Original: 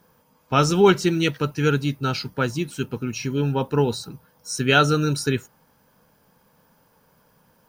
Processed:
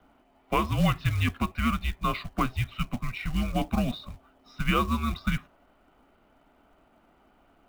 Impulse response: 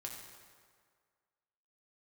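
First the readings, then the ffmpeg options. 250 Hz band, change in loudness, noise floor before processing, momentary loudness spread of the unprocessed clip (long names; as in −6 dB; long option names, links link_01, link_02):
−6.0 dB, −7.0 dB, −61 dBFS, 12 LU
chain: -filter_complex "[0:a]acrossover=split=280|1400[link_01][link_02][link_03];[link_01]acompressor=threshold=-29dB:ratio=4[link_04];[link_02]acompressor=threshold=-26dB:ratio=4[link_05];[link_03]acompressor=threshold=-31dB:ratio=4[link_06];[link_04][link_05][link_06]amix=inputs=3:normalize=0,highpass=frequency=210:width_type=q:width=0.5412,highpass=frequency=210:width_type=q:width=1.307,lowpass=frequency=3600:width_type=q:width=0.5176,lowpass=frequency=3600:width_type=q:width=0.7071,lowpass=frequency=3600:width_type=q:width=1.932,afreqshift=-230,acrusher=bits=5:mode=log:mix=0:aa=0.000001,volume=1dB"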